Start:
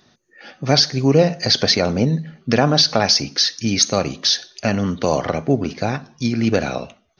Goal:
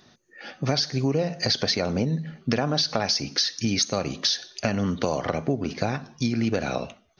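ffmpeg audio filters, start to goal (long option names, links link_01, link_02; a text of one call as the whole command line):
ffmpeg -i in.wav -af "acompressor=threshold=-21dB:ratio=5" out.wav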